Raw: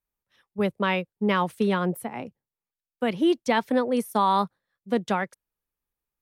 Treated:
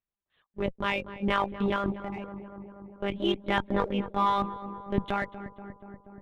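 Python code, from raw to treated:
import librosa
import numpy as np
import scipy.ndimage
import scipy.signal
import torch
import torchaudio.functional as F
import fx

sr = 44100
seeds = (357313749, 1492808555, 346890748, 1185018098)

p1 = fx.dereverb_blind(x, sr, rt60_s=1.4)
p2 = fx.lpc_monotone(p1, sr, seeds[0], pitch_hz=200.0, order=16)
p3 = np.sign(p2) * np.maximum(np.abs(p2) - 10.0 ** (-40.0 / 20.0), 0.0)
p4 = p2 + (p3 * librosa.db_to_amplitude(-7.5))
p5 = fx.transient(p4, sr, attack_db=-4, sustain_db=4)
p6 = p5 + fx.echo_filtered(p5, sr, ms=240, feedback_pct=75, hz=1700.0, wet_db=-13.5, dry=0)
p7 = fx.cheby_harmonics(p6, sr, harmonics=(8,), levels_db=(-32,), full_scale_db=-4.0)
y = p7 * librosa.db_to_amplitude(-4.5)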